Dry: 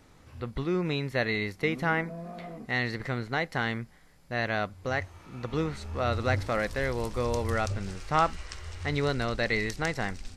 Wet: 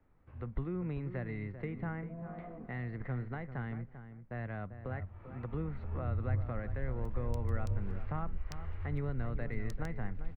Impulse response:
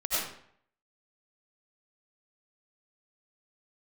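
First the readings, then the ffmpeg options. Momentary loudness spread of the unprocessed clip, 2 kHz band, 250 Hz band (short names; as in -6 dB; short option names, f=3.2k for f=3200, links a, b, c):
10 LU, -17.5 dB, -8.0 dB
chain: -filter_complex "[0:a]agate=range=-10dB:threshold=-52dB:ratio=16:detection=peak,lowshelf=f=62:g=9.5,acrossover=split=210[a][b];[b]acompressor=threshold=-38dB:ratio=3[c];[a][c]amix=inputs=2:normalize=0,asplit=2[d][e];[e]adelay=393,lowpass=f=1.6k:p=1,volume=-10.5dB,asplit=2[f][g];[g]adelay=393,lowpass=f=1.6k:p=1,volume=0.18[h];[d][f][h]amix=inputs=3:normalize=0,acrossover=split=170|2300[i][j][k];[k]acrusher=bits=4:mix=0:aa=0.5[l];[i][j][l]amix=inputs=3:normalize=0,volume=-5dB"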